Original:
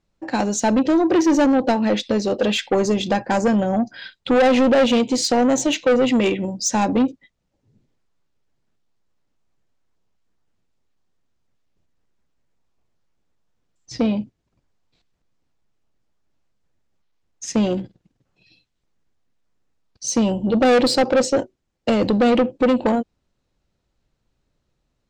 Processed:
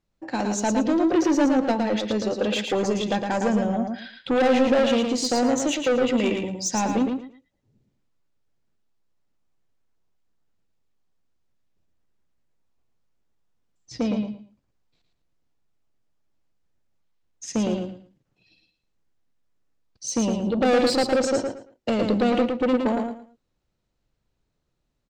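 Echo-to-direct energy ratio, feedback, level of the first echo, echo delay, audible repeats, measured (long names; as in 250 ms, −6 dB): −5.0 dB, 23%, −5.0 dB, 112 ms, 3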